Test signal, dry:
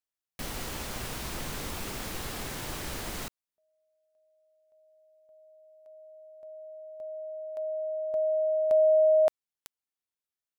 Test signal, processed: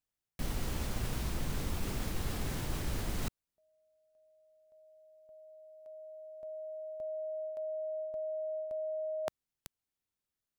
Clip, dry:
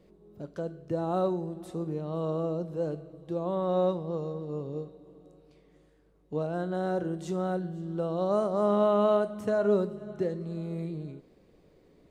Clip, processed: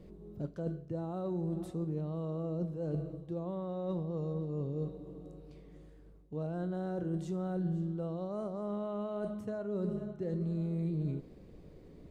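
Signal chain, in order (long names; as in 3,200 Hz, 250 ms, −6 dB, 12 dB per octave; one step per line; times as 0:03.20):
reversed playback
downward compressor 12 to 1, threshold −38 dBFS
reversed playback
low-shelf EQ 270 Hz +12 dB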